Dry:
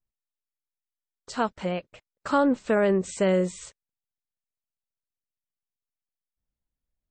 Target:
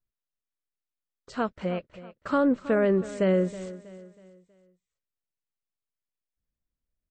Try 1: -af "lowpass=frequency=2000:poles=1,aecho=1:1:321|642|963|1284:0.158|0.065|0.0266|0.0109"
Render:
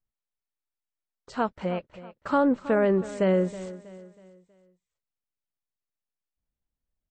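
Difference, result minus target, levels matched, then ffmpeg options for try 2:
1,000 Hz band +3.0 dB
-af "lowpass=frequency=2000:poles=1,equalizer=frequency=870:width_type=o:width=0.43:gain=-7,aecho=1:1:321|642|963|1284:0.158|0.065|0.0266|0.0109"

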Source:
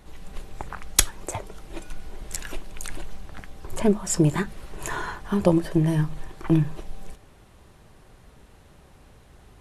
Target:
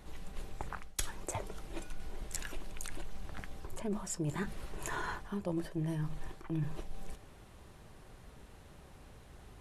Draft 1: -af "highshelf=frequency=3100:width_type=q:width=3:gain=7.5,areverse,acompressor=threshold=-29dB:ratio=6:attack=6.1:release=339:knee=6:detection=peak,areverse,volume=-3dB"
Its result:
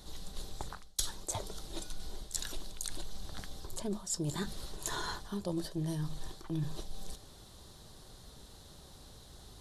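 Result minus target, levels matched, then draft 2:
4,000 Hz band +7.0 dB
-af "areverse,acompressor=threshold=-29dB:ratio=6:attack=6.1:release=339:knee=6:detection=peak,areverse,volume=-3dB"

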